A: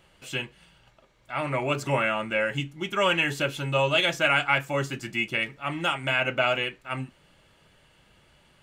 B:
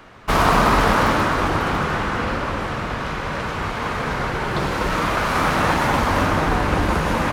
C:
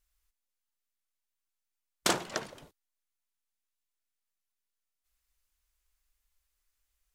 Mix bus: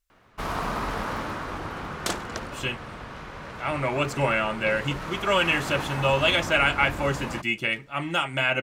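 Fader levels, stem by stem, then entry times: +1.0 dB, -13.5 dB, -1.5 dB; 2.30 s, 0.10 s, 0.00 s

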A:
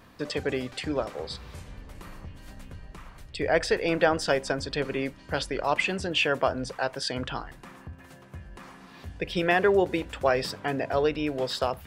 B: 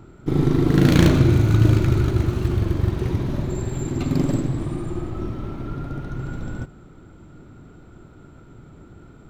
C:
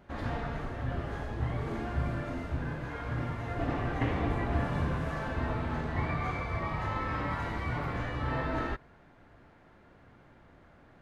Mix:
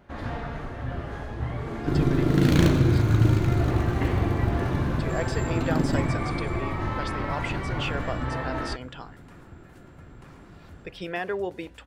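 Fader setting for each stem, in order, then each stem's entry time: -8.0 dB, -4.5 dB, +2.0 dB; 1.65 s, 1.60 s, 0.00 s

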